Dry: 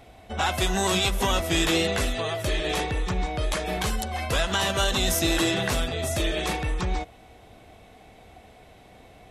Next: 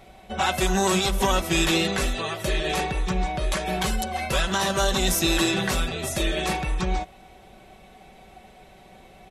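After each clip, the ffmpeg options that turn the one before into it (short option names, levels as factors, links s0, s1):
-af "aecho=1:1:5.3:0.63"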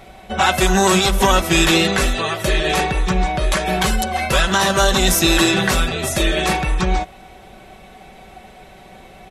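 -af "equalizer=f=1500:w=1.5:g=2.5,volume=2.24"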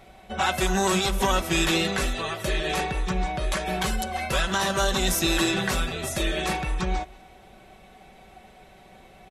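-af "aecho=1:1:189:0.0668,volume=0.376"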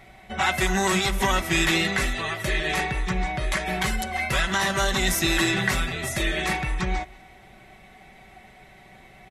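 -af "equalizer=f=125:t=o:w=0.33:g=6,equalizer=f=500:t=o:w=0.33:g=-6,equalizer=f=2000:t=o:w=0.33:g=10"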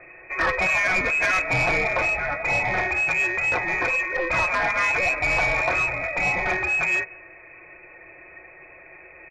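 -af "lowpass=f=2200:t=q:w=0.5098,lowpass=f=2200:t=q:w=0.6013,lowpass=f=2200:t=q:w=0.9,lowpass=f=2200:t=q:w=2.563,afreqshift=-2600,lowshelf=f=180:g=11.5,asoftclip=type=tanh:threshold=0.112,volume=1.5"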